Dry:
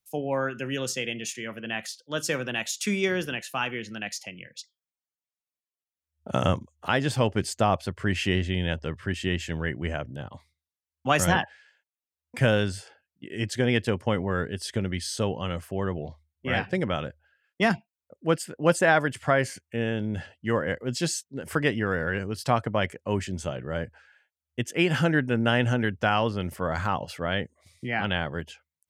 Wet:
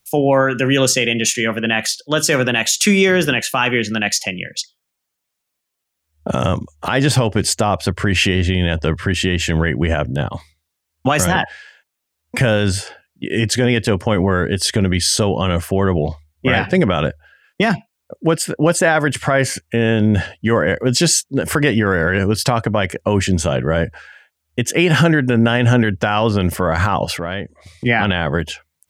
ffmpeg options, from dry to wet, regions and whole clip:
ffmpeg -i in.wav -filter_complex "[0:a]asettb=1/sr,asplit=3[link_01][link_02][link_03];[link_01]atrim=end=27.174[link_04];[link_02]atrim=start=27.17:end=27.86,asetpts=PTS-STARTPTS,afade=type=in:duration=0.004:curve=qsin,afade=type=out:start_time=0.686:duration=0.004:curve=qsin,lowpass=frequency=3600:poles=1,acompressor=threshold=-40dB:ratio=3:attack=3.2:release=140:knee=1:detection=peak[link_05];[link_03]atrim=start=27.856[link_06];[link_04][link_05]acrossfade=duration=0.004:curve1=hsin:curve2=qsin[link_07];[link_07][link_06]acrossfade=duration=0.004:curve1=qsin:curve2=hsin,acompressor=threshold=-25dB:ratio=2.5,alimiter=level_in=20.5dB:limit=-1dB:release=50:level=0:latency=1,volume=-3.5dB" out.wav

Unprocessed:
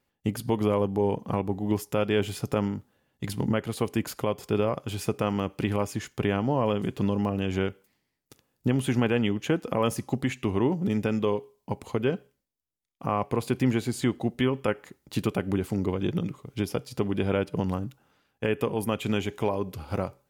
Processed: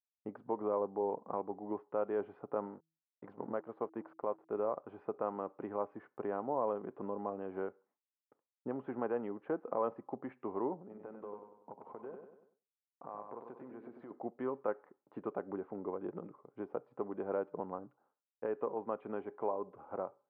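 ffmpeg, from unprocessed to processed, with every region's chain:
ffmpeg -i in.wav -filter_complex "[0:a]asettb=1/sr,asplit=3[link_01][link_02][link_03];[link_01]atrim=end=2.664[link_04];[link_02]atrim=start=2.66:end=4.61,asetpts=PTS-STARTPTS,afade=type=in:duration=0.004:curve=qsin,afade=type=out:start_time=1.946:duration=0.004:curve=qsin,aeval=exprs='sgn(val(0))*max(abs(val(0))-0.00562,0)':channel_layout=same,bandreject=frequency=161.3:width_type=h:width=4,bandreject=frequency=322.6:width_type=h:width=4[link_05];[link_03]atrim=start=4.606[link_06];[link_04][link_05]acrossfade=duration=0.004:curve1=hsin:curve2=qsin[link_07];[link_07][link_06]acrossfade=duration=0.004:curve1=qsin:curve2=hsin,asettb=1/sr,asplit=3[link_08][link_09][link_10];[link_08]atrim=end=10.814[link_11];[link_09]atrim=start=10.81:end=14.11,asetpts=PTS-STARTPTS,afade=type=in:duration=0.004:curve=qsin,afade=type=out:start_time=3.296:duration=0.004:curve=qsin,acompressor=threshold=-32dB:ratio=6:attack=3.2:release=140:knee=1:detection=peak,aecho=1:1:96|192|288|384|480|576:0.501|0.241|0.115|0.0554|0.0266|0.0128,atrim=end_sample=145530[link_12];[link_10]atrim=start=14.106[link_13];[link_11][link_12]acrossfade=duration=0.004:curve1=hsin:curve2=qsin[link_14];[link_14][link_13]acrossfade=duration=0.004:curve1=qsin:curve2=hsin,lowpass=frequency=1200:width=0.5412,lowpass=frequency=1200:width=1.3066,agate=range=-33dB:threshold=-54dB:ratio=3:detection=peak,highpass=450,volume=-5.5dB" out.wav

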